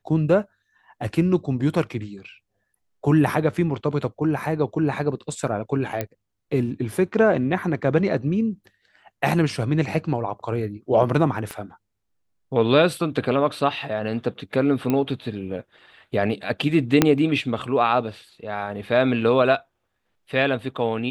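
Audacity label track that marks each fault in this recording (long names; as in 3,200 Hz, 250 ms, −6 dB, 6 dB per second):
6.010000	6.010000	click −11 dBFS
11.510000	11.510000	click −17 dBFS
14.900000	14.900000	click −11 dBFS
17.020000	17.020000	click 0 dBFS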